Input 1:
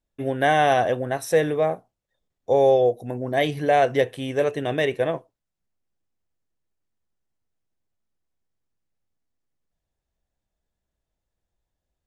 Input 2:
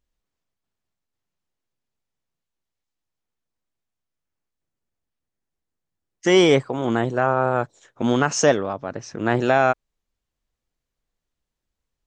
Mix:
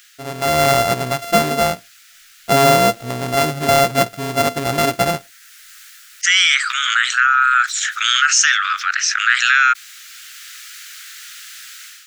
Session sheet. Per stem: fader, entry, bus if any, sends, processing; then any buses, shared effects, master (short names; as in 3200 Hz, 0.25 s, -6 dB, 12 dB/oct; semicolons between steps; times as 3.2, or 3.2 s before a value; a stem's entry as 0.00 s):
-4.5 dB, 0.00 s, no send, sample sorter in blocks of 64 samples; de-esser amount 30%
+2.0 dB, 0.00 s, no send, steep high-pass 1300 Hz 96 dB/oct; fast leveller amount 70%; auto duck -7 dB, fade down 0.30 s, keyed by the first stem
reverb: off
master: AGC gain up to 11 dB